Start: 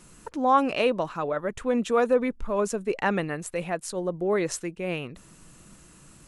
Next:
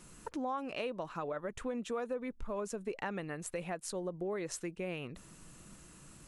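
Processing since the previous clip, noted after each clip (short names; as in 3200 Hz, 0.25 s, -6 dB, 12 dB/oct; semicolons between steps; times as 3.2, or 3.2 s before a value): compressor 5:1, threshold -32 dBFS, peak gain reduction 15.5 dB; gain -3.5 dB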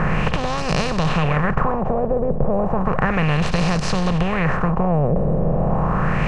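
per-bin compression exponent 0.2; resonant low shelf 210 Hz +11 dB, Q 3; LFO low-pass sine 0.33 Hz 530–4800 Hz; gain +7 dB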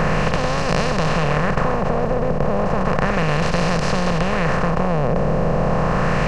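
per-bin compression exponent 0.4; gain -4.5 dB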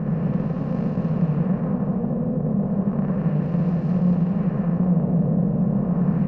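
band-pass 200 Hz, Q 2.4; on a send: loudspeakers at several distances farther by 21 m 0 dB, 78 m -1 dB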